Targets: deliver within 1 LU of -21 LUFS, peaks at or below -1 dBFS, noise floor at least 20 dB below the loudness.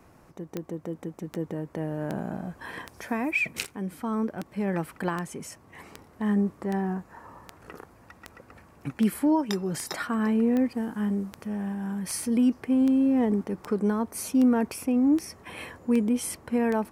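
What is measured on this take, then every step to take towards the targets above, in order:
clicks 22; loudness -27.5 LUFS; peak -11.0 dBFS; loudness target -21.0 LUFS
-> de-click; gain +6.5 dB

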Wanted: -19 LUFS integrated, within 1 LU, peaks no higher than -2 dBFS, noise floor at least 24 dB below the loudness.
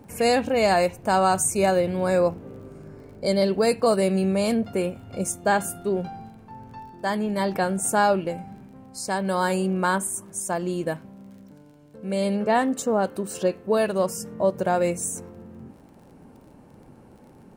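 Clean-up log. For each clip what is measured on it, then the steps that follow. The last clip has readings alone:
ticks 26/s; loudness -24.0 LUFS; peak -9.0 dBFS; loudness target -19.0 LUFS
-> de-click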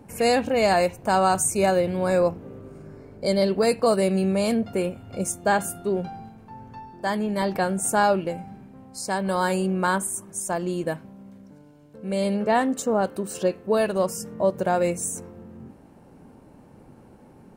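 ticks 0.057/s; loudness -24.0 LUFS; peak -9.0 dBFS; loudness target -19.0 LUFS
-> gain +5 dB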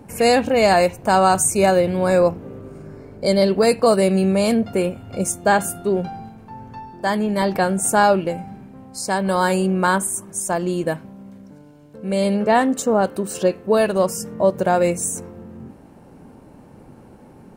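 loudness -19.0 LUFS; peak -4.0 dBFS; noise floor -46 dBFS

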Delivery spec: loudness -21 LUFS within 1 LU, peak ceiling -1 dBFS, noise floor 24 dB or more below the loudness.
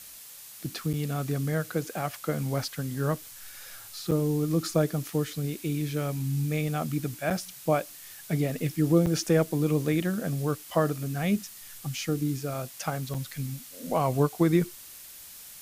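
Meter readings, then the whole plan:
dropouts 5; longest dropout 6.3 ms; noise floor -46 dBFS; noise floor target -53 dBFS; loudness -29.0 LUFS; peak -11.0 dBFS; loudness target -21.0 LUFS
-> interpolate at 0.93/4.11/7.3/9.06/13.14, 6.3 ms; noise print and reduce 7 dB; gain +8 dB

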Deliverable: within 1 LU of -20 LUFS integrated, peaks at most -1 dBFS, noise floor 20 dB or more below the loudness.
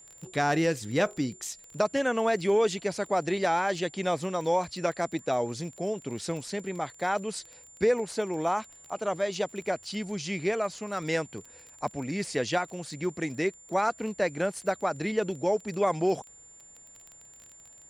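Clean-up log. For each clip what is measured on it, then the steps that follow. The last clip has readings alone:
ticks 20/s; steady tone 7200 Hz; tone level -50 dBFS; loudness -29.5 LUFS; peak -12.5 dBFS; loudness target -20.0 LUFS
-> de-click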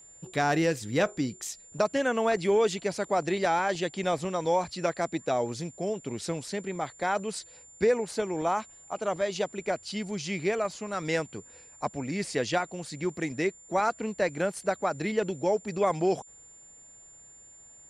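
ticks 0/s; steady tone 7200 Hz; tone level -50 dBFS
-> notch 7200 Hz, Q 30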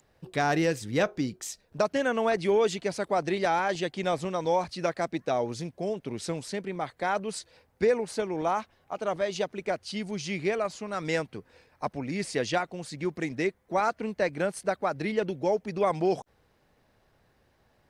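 steady tone none; loudness -29.5 LUFS; peak -12.5 dBFS; loudness target -20.0 LUFS
-> gain +9.5 dB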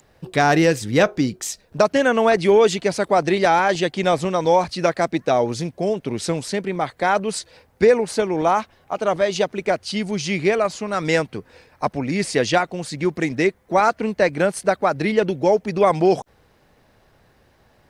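loudness -20.0 LUFS; peak -3.0 dBFS; noise floor -58 dBFS

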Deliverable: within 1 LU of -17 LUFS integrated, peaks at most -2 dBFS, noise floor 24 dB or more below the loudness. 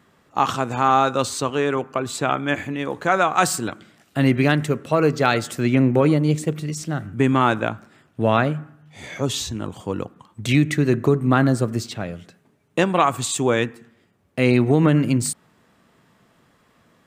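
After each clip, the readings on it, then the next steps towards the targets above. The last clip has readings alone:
loudness -21.0 LUFS; peak -2.5 dBFS; loudness target -17.0 LUFS
-> gain +4 dB; limiter -2 dBFS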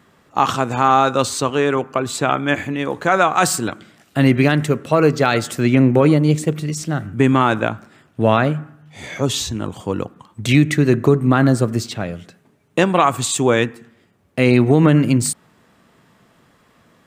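loudness -17.5 LUFS; peak -2.0 dBFS; noise floor -57 dBFS

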